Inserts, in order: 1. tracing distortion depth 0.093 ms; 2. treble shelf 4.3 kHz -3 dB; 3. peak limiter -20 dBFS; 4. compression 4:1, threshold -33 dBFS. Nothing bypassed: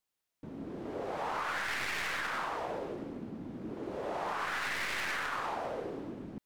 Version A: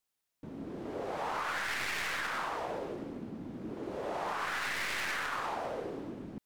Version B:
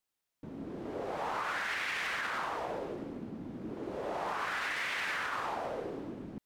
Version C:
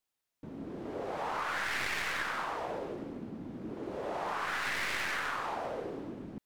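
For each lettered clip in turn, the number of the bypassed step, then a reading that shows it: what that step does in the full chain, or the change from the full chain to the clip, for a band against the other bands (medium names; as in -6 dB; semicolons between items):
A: 2, 8 kHz band +2.0 dB; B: 1, 8 kHz band -2.5 dB; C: 3, crest factor change +2.5 dB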